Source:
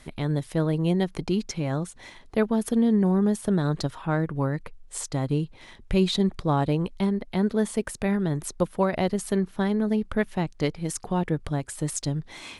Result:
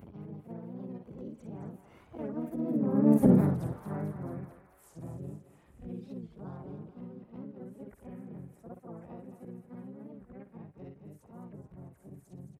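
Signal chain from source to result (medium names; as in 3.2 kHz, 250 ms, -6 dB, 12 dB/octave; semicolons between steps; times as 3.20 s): short-time spectra conjugated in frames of 125 ms; Doppler pass-by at 3.23 s, 20 m/s, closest 1.1 m; tilt EQ -2.5 dB/octave; in parallel at -1 dB: compression, threshold -41 dBFS, peak gain reduction 17.5 dB; on the sum: harmony voices -7 st -10 dB, +5 st -2 dB; upward compressor, threshold -39 dBFS; high-pass 51 Hz 24 dB/octave; peaking EQ 4.6 kHz -14 dB 1.7 oct; thinning echo 218 ms, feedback 66%, high-pass 780 Hz, level -7.5 dB; warped record 45 rpm, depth 160 cents; trim +3 dB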